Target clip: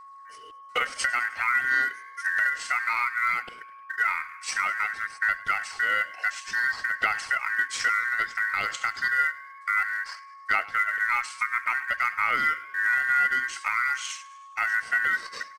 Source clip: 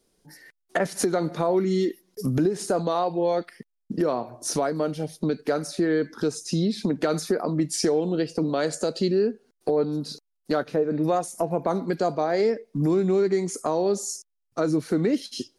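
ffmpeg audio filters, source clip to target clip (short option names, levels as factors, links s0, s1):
-filter_complex "[0:a]acrusher=bits=7:mode=log:mix=0:aa=0.000001,asetrate=30296,aresample=44100,atempo=1.45565,aeval=exprs='val(0)*sin(2*PI*1700*n/s)':c=same,aphaser=in_gain=1:out_gain=1:delay=4.2:decay=0.31:speed=0.57:type=sinusoidal,aeval=exprs='val(0)+0.00631*sin(2*PI*1100*n/s)':c=same,asplit=6[s0][s1][s2][s3][s4][s5];[s1]adelay=103,afreqshift=56,volume=0.1[s6];[s2]adelay=206,afreqshift=112,volume=0.0569[s7];[s3]adelay=309,afreqshift=168,volume=0.0324[s8];[s4]adelay=412,afreqshift=224,volume=0.0186[s9];[s5]adelay=515,afreqshift=280,volume=0.0106[s10];[s0][s6][s7][s8][s9][s10]amix=inputs=6:normalize=0"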